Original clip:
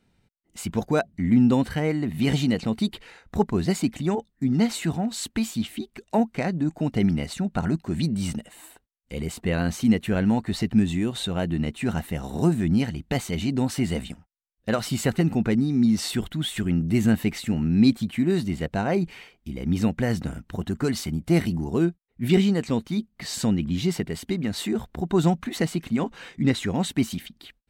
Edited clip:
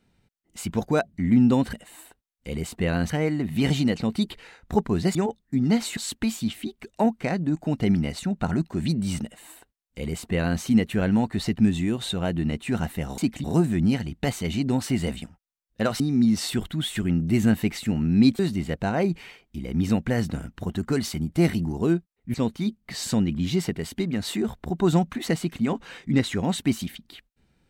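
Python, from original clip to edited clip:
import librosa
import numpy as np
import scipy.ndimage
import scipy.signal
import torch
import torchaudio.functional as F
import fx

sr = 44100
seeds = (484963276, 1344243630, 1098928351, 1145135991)

y = fx.edit(x, sr, fx.move(start_s=3.78, length_s=0.26, to_s=12.32),
    fx.cut(start_s=4.86, length_s=0.25),
    fx.duplicate(start_s=8.38, length_s=1.37, to_s=1.73),
    fx.cut(start_s=14.88, length_s=0.73),
    fx.cut(start_s=18.0, length_s=0.31),
    fx.cut(start_s=22.26, length_s=0.39), tone=tone)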